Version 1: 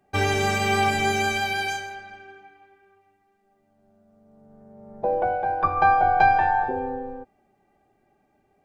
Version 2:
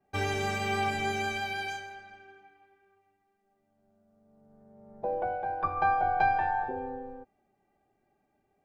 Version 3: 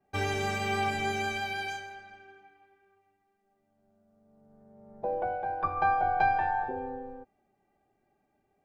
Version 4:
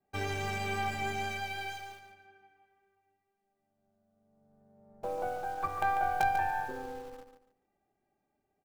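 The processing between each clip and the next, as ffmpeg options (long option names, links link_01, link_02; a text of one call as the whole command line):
ffmpeg -i in.wav -af "adynamicequalizer=threshold=0.00794:dfrequency=5100:dqfactor=0.7:tfrequency=5100:tqfactor=0.7:attack=5:release=100:ratio=0.375:range=2.5:mode=cutabove:tftype=highshelf,volume=-8dB" out.wav
ffmpeg -i in.wav -af anull out.wav
ffmpeg -i in.wav -filter_complex "[0:a]asplit=2[link_01][link_02];[link_02]acrusher=bits=4:dc=4:mix=0:aa=0.000001,volume=-5dB[link_03];[link_01][link_03]amix=inputs=2:normalize=0,aecho=1:1:144|288|432:0.355|0.0852|0.0204,volume=-7dB" out.wav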